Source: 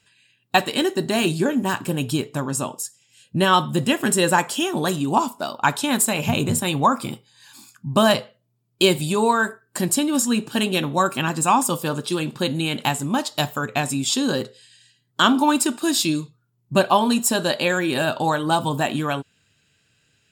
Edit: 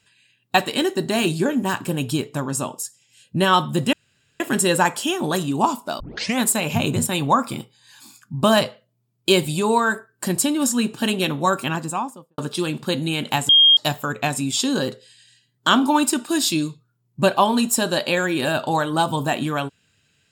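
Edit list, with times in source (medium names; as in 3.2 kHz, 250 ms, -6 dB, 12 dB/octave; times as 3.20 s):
3.93 s: insert room tone 0.47 s
5.53 s: tape start 0.40 s
11.09–11.91 s: studio fade out
13.02–13.30 s: bleep 3.23 kHz -9 dBFS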